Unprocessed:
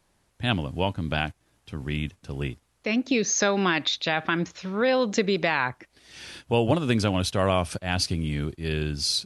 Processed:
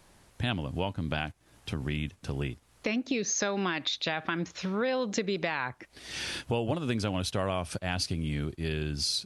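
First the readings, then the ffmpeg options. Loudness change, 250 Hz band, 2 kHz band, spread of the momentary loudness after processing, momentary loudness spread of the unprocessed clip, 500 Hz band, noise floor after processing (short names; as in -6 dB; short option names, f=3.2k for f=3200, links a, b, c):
-6.0 dB, -5.5 dB, -6.5 dB, 7 LU, 11 LU, -6.5 dB, -63 dBFS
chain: -af "acompressor=threshold=-41dB:ratio=3,volume=8.5dB"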